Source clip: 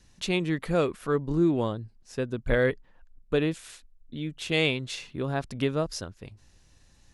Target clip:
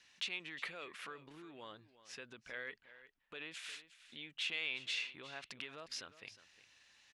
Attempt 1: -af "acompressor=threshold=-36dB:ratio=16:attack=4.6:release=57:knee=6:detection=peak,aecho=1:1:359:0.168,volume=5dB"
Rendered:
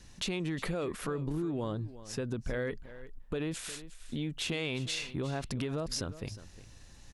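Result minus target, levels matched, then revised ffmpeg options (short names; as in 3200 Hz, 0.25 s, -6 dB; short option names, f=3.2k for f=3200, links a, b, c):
2000 Hz band -6.5 dB
-af "acompressor=threshold=-36dB:ratio=16:attack=4.6:release=57:knee=6:detection=peak,bandpass=f=2.5k:t=q:w=1.4:csg=0,aecho=1:1:359:0.168,volume=5dB"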